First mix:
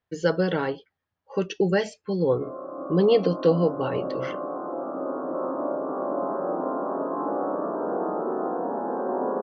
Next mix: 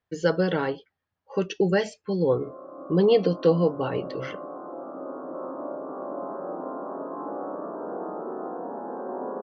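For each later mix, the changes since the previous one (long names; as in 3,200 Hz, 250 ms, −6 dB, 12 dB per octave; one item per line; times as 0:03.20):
background −6.0 dB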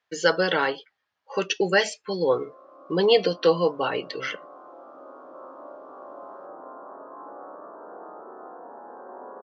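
speech +10.5 dB
master: add high-pass filter 1,400 Hz 6 dB per octave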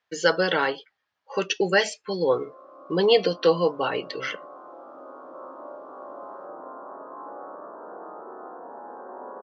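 background: send +9.5 dB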